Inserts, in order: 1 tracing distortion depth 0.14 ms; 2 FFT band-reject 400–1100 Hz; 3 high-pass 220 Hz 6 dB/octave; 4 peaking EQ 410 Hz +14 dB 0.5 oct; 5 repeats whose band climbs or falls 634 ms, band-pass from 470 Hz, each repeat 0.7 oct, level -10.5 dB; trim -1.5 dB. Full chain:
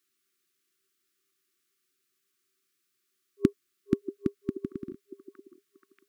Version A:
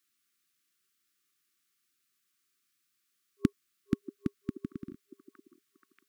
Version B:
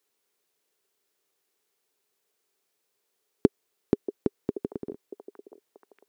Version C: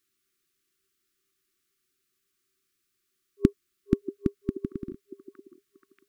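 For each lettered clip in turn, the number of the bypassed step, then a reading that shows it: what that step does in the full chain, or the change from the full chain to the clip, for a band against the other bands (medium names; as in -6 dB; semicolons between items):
4, 500 Hz band -9.5 dB; 2, 1 kHz band +8.5 dB; 3, 125 Hz band +5.0 dB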